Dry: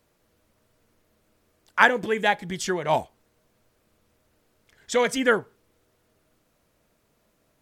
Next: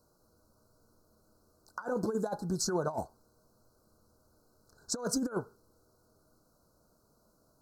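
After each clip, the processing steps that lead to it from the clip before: Chebyshev band-stop 1500–4100 Hz, order 5; negative-ratio compressor -27 dBFS, ratio -0.5; gain -4.5 dB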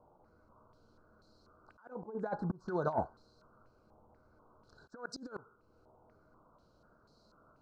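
auto swell 0.437 s; stepped low-pass 4.1 Hz 850–4100 Hz; gain +1.5 dB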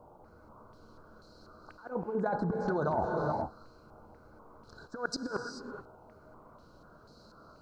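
non-linear reverb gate 0.46 s rising, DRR 6.5 dB; in parallel at +3 dB: negative-ratio compressor -38 dBFS, ratio -0.5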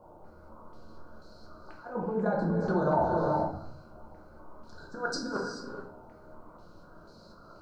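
shoebox room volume 100 m³, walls mixed, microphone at 0.93 m; gain -1 dB

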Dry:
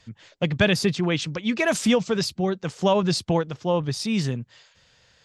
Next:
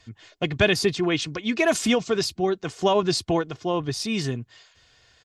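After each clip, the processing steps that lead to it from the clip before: comb 2.8 ms, depth 50%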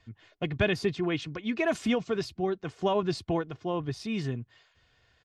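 tone controls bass +3 dB, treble -11 dB; gain -6.5 dB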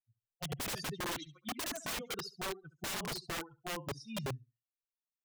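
per-bin expansion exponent 3; flutter echo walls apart 11.9 m, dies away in 0.26 s; wrapped overs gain 34 dB; gain +1 dB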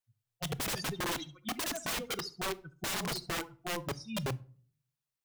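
reverb RT60 0.45 s, pre-delay 6 ms, DRR 17.5 dB; gain +3.5 dB

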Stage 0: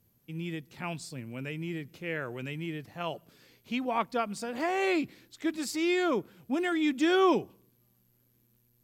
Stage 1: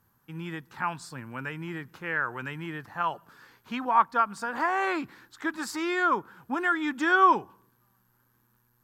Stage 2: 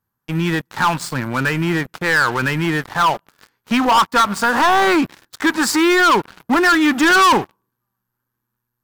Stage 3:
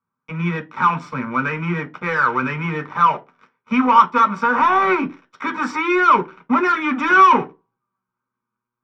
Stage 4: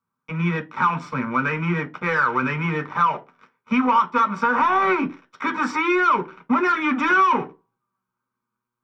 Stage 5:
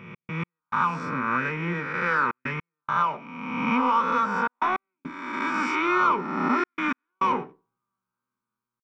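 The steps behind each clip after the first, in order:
band shelf 1200 Hz +15.5 dB 1.3 oct; in parallel at -1.5 dB: compressor, threshold -29 dBFS, peak gain reduction 17.5 dB; on the sum: gain -6 dB
sample leveller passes 5
air absorption 180 m; reverb RT60 0.25 s, pre-delay 3 ms, DRR 5 dB; gain -11.5 dB
compressor 3:1, threshold -16 dBFS, peak gain reduction 8 dB
spectral swells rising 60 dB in 1.39 s; step gate "x.x..xxxxxxxxxx" 104 bpm -60 dB; gain -7.5 dB

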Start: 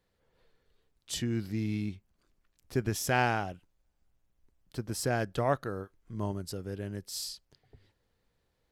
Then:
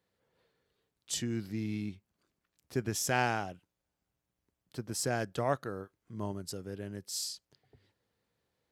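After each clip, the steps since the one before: dynamic EQ 7000 Hz, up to +6 dB, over -53 dBFS, Q 1.3; HPF 100 Hz 12 dB/oct; gain -2.5 dB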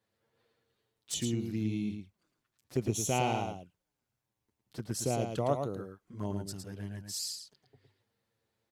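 envelope flanger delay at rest 9.1 ms, full sweep at -32 dBFS; echo 0.11 s -6 dB; gain +2 dB

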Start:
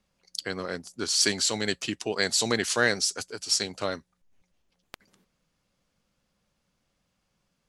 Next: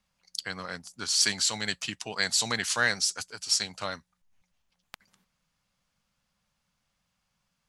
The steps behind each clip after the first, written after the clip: EQ curve 180 Hz 0 dB, 370 Hz -10 dB, 880 Hz +3 dB; gain -3.5 dB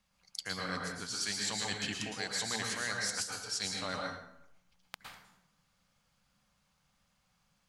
reverse; compressor 6:1, threshold -35 dBFS, peak gain reduction 15 dB; reverse; plate-style reverb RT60 0.78 s, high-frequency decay 0.65×, pre-delay 0.1 s, DRR -0.5 dB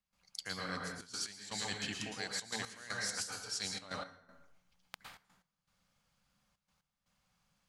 step gate ".xxxxxxx.x." 119 bpm -12 dB; gain -3 dB

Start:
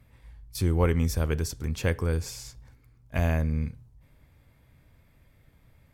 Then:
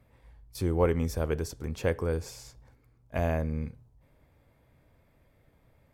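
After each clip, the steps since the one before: bell 560 Hz +9 dB 2.3 oct; gain -6.5 dB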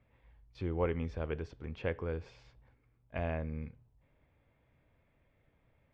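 ladder low-pass 3600 Hz, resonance 35%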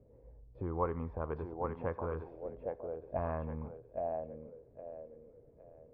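compressor 1.5:1, threshold -56 dBFS, peak gain reduction 10.5 dB; thinning echo 0.814 s, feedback 47%, high-pass 370 Hz, level -3 dB; envelope low-pass 450–1100 Hz up, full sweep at -40 dBFS; gain +5.5 dB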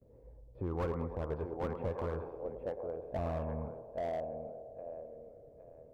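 gate with hold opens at -58 dBFS; narrowing echo 0.105 s, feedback 79%, band-pass 550 Hz, level -10.5 dB; slew limiter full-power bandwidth 14 Hz; gain +1 dB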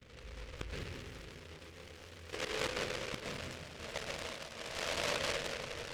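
flipped gate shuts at -33 dBFS, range -27 dB; reverb RT60 2.4 s, pre-delay 0.113 s, DRR -5 dB; noise-modulated delay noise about 2000 Hz, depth 0.3 ms; gain +4 dB

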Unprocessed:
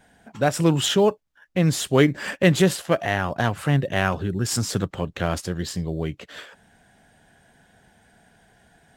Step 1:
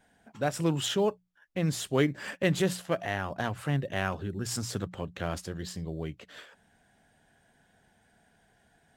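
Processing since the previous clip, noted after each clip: notches 60/120/180 Hz; gain -8.5 dB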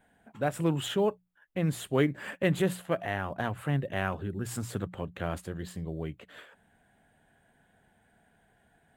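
bell 5400 Hz -14 dB 0.78 oct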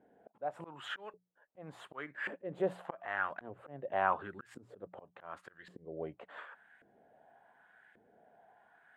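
auto swell 0.457 s; LFO band-pass saw up 0.88 Hz 360–1900 Hz; gain +9.5 dB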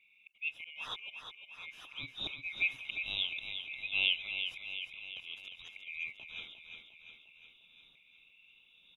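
band-swap scrambler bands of 2000 Hz; on a send: feedback echo 0.353 s, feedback 59%, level -7.5 dB

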